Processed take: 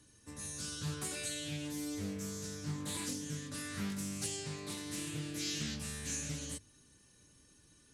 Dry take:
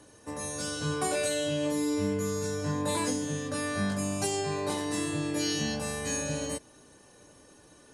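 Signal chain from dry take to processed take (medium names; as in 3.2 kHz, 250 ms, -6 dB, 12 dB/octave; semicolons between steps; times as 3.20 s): amplifier tone stack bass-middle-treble 6-0-2; hum notches 50/100 Hz; loudspeaker Doppler distortion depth 0.43 ms; trim +10 dB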